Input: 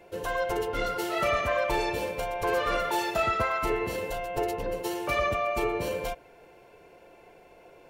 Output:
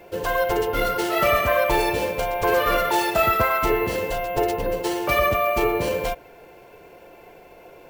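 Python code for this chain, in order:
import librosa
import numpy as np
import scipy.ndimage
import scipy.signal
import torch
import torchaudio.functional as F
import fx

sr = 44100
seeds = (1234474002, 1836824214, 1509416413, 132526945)

y = np.repeat(x[::3], 3)[:len(x)]
y = y * librosa.db_to_amplitude(7.0)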